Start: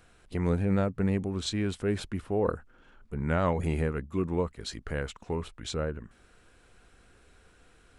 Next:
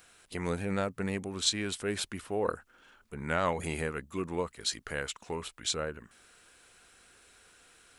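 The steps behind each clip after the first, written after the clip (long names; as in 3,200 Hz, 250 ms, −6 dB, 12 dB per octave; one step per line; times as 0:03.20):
spectral tilt +3 dB per octave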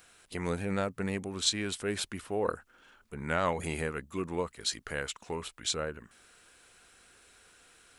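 no processing that can be heard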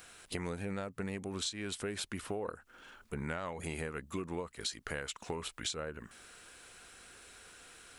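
downward compressor 16 to 1, threshold −39 dBFS, peak gain reduction 17.5 dB
level +4.5 dB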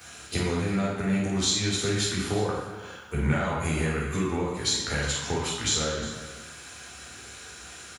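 single-tap delay 358 ms −15.5 dB
convolution reverb RT60 1.0 s, pre-delay 3 ms, DRR −5.5 dB
level +3 dB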